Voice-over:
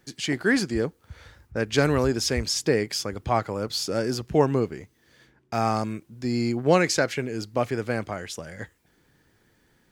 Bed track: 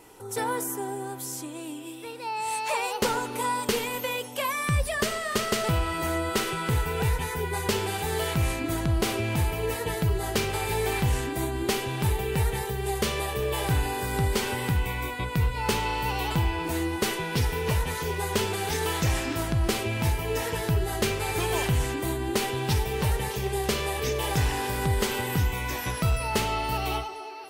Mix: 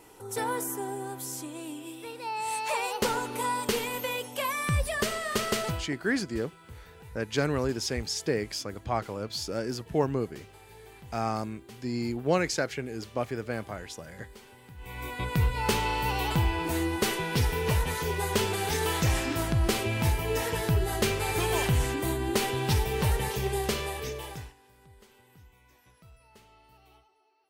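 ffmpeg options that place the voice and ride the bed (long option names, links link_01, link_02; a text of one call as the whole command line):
ffmpeg -i stem1.wav -i stem2.wav -filter_complex "[0:a]adelay=5600,volume=-6dB[link_01];[1:a]volume=21dB,afade=type=out:start_time=5.57:duration=0.32:silence=0.0841395,afade=type=in:start_time=14.77:duration=0.54:silence=0.0707946,afade=type=out:start_time=23.47:duration=1.07:silence=0.0316228[link_02];[link_01][link_02]amix=inputs=2:normalize=0" out.wav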